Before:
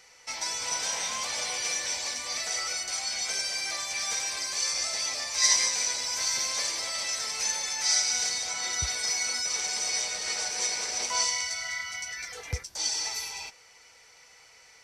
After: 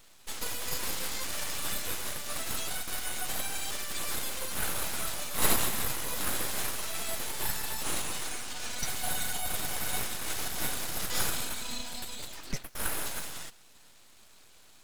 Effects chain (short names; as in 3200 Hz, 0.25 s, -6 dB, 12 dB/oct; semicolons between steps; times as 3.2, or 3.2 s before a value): 7.83–8.83 LPF 4900 Hz 24 dB/oct; full-wave rectifier